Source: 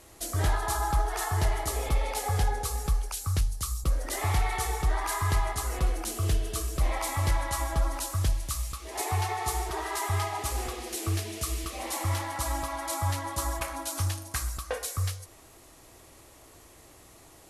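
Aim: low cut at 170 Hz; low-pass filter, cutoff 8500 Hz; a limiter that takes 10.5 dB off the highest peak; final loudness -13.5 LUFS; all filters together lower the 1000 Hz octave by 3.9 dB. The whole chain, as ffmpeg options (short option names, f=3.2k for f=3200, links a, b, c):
-af "highpass=170,lowpass=8.5k,equalizer=f=1k:t=o:g=-5,volume=25dB,alimiter=limit=-4dB:level=0:latency=1"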